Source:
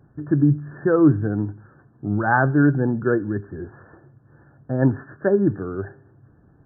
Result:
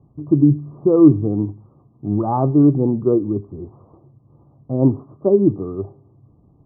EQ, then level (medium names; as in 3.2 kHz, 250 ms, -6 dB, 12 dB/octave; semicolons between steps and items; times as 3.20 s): Chebyshev low-pass 1.2 kHz, order 8; bass shelf 250 Hz +3.5 dB; dynamic bell 360 Hz, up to +6 dB, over -29 dBFS, Q 1.4; -1.0 dB